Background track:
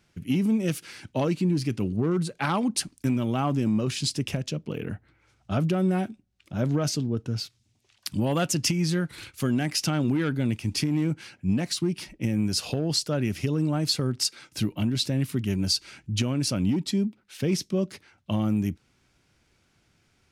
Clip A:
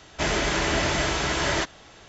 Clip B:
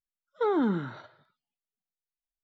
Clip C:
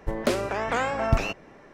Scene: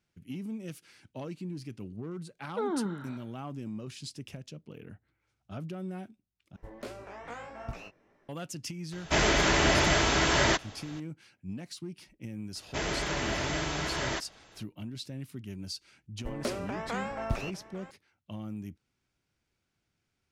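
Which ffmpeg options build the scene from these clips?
ffmpeg -i bed.wav -i cue0.wav -i cue1.wav -i cue2.wav -filter_complex "[3:a]asplit=2[link_01][link_02];[1:a]asplit=2[link_03][link_04];[0:a]volume=-14.5dB[link_05];[link_01]flanger=delay=16.5:depth=5.3:speed=2.5[link_06];[link_02]aecho=1:1:850:0.15[link_07];[link_05]asplit=2[link_08][link_09];[link_08]atrim=end=6.564[link_10];[link_06]atrim=end=1.73,asetpts=PTS-STARTPTS,volume=-14dB[link_11];[link_09]atrim=start=8.286[link_12];[2:a]atrim=end=2.43,asetpts=PTS-STARTPTS,volume=-6dB,afade=type=in:duration=0.004:curve=hsin,afade=type=out:start_time=2.426:duration=0.004:curve=hsin,adelay=2160[link_13];[link_03]atrim=end=2.08,asetpts=PTS-STARTPTS,afade=type=in:duration=0.004:curve=hsin,afade=type=out:start_time=2.076:duration=0.004:curve=hsin,adelay=8920[link_14];[link_04]atrim=end=2.08,asetpts=PTS-STARTPTS,volume=-8dB,afade=type=in:duration=0.004:curve=hsin,afade=type=out:start_time=2.076:duration=0.004:curve=hsin,adelay=12550[link_15];[link_07]atrim=end=1.73,asetpts=PTS-STARTPTS,volume=-9.5dB,afade=type=in:duration=0.004:curve=hsin,afade=type=out:start_time=1.726:duration=0.004:curve=hsin,adelay=16180[link_16];[link_10][link_11]acrossfade=duration=0.004:curve1=hsin:curve2=hsin[link_17];[link_17][link_12]acrossfade=duration=0.004:curve1=hsin:curve2=hsin[link_18];[link_18][link_13][link_14][link_15][link_16]amix=inputs=5:normalize=0" out.wav

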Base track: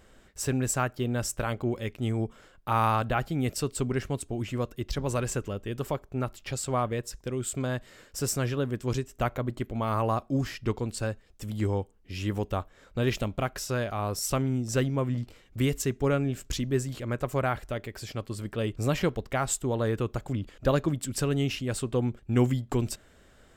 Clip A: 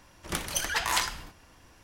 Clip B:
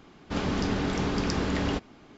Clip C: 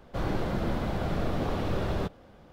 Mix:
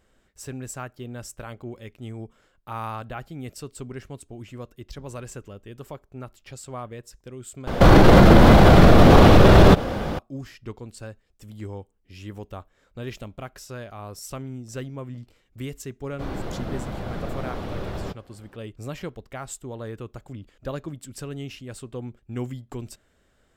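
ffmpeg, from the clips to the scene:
ffmpeg -i bed.wav -i cue0.wav -i cue1.wav -i cue2.wav -filter_complex "[3:a]asplit=2[link_01][link_02];[0:a]volume=-7.5dB[link_03];[link_01]alimiter=level_in=28.5dB:limit=-1dB:release=50:level=0:latency=1[link_04];[link_03]asplit=2[link_05][link_06];[link_05]atrim=end=7.674[link_07];[link_04]atrim=end=2.52,asetpts=PTS-STARTPTS,volume=-2dB[link_08];[link_06]atrim=start=10.186[link_09];[link_02]atrim=end=2.52,asetpts=PTS-STARTPTS,volume=-2dB,afade=type=in:duration=0.004:curve=hsin,afade=type=out:start_time=2.516:duration=0.004:curve=hsin,adelay=16050[link_10];[link_07][link_08]acrossfade=duration=0.004:curve1=hsin:curve2=hsin[link_11];[link_11][link_09]acrossfade=duration=0.004:curve1=hsin:curve2=hsin[link_12];[link_12][link_10]amix=inputs=2:normalize=0" out.wav

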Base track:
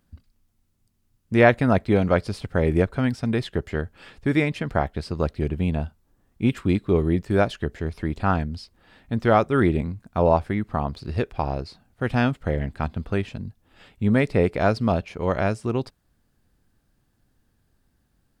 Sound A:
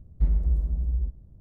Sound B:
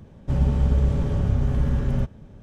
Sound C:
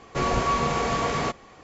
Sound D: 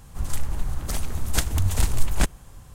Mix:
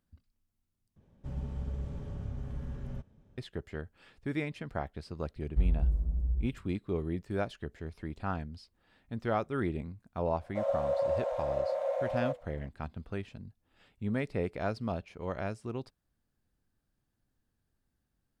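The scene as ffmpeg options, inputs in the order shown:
ffmpeg -i bed.wav -i cue0.wav -i cue1.wav -filter_complex "[2:a]asplit=2[link_01][link_02];[0:a]volume=-13dB[link_03];[link_02]afreqshift=490[link_04];[link_03]asplit=2[link_05][link_06];[link_05]atrim=end=0.964[link_07];[link_01]atrim=end=2.42,asetpts=PTS-STARTPTS,volume=-17dB[link_08];[link_06]atrim=start=3.376[link_09];[1:a]atrim=end=1.4,asetpts=PTS-STARTPTS,volume=-4.5dB,afade=type=in:duration=0.004:curve=hsin,afade=type=out:start_time=1.396:duration=0.004:curve=hsin,adelay=5360[link_10];[link_04]atrim=end=2.42,asetpts=PTS-STARTPTS,volume=-11.5dB,afade=type=in:duration=0.004:curve=hsin,afade=type=out:start_time=2.416:duration=0.004:curve=hsin,adelay=10270[link_11];[link_07][link_08]acrossfade=duration=0.004:curve1=hsin:curve2=hsin[link_12];[link_12][link_09]acrossfade=duration=0.004:curve1=hsin:curve2=hsin[link_13];[link_13][link_10][link_11]amix=inputs=3:normalize=0" out.wav

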